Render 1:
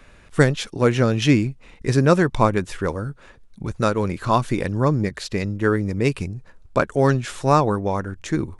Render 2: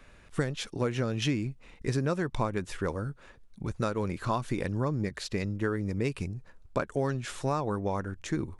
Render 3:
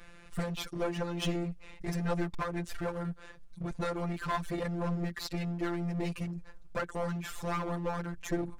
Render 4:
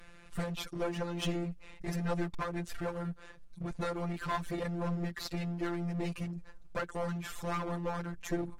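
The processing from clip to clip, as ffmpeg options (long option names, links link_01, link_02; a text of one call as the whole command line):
ffmpeg -i in.wav -af "acompressor=threshold=-19dB:ratio=6,volume=-6dB" out.wav
ffmpeg -i in.wav -af "afftfilt=real='hypot(re,im)*cos(PI*b)':imag='0':win_size=1024:overlap=0.75,aeval=exprs='clip(val(0),-1,0.0126)':channel_layout=same,volume=5.5dB" out.wav
ffmpeg -i in.wav -af "volume=-1.5dB" -ar 44100 -c:a aac -b:a 64k out.aac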